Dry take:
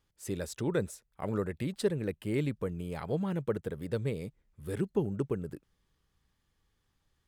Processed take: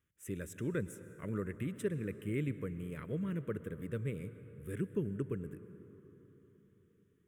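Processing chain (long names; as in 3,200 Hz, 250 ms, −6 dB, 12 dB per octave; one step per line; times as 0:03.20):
high-pass filter 68 Hz
phaser with its sweep stopped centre 1,900 Hz, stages 4
on a send: convolution reverb RT60 4.2 s, pre-delay 98 ms, DRR 13 dB
on the sum: level −3 dB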